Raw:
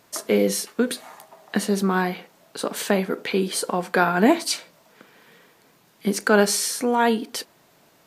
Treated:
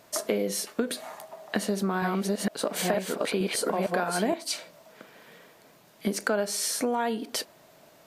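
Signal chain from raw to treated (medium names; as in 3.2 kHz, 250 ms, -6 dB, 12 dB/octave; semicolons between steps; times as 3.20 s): 1.56–4.34 s: chunks repeated in reverse 461 ms, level 0 dB; peaking EQ 620 Hz +8.5 dB 0.28 oct; compression 6:1, threshold -24 dBFS, peak gain reduction 15.5 dB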